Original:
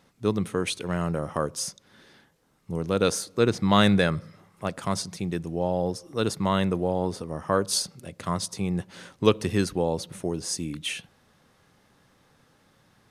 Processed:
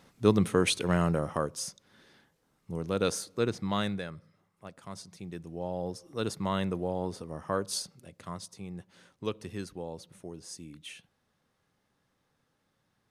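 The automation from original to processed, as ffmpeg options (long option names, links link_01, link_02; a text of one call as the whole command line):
ffmpeg -i in.wav -af "volume=12dB,afade=type=out:start_time=0.91:duration=0.62:silence=0.421697,afade=type=out:start_time=3.24:duration=0.81:silence=0.281838,afade=type=in:start_time=4.85:duration=1.35:silence=0.316228,afade=type=out:start_time=7.41:duration=1.13:silence=0.421697" out.wav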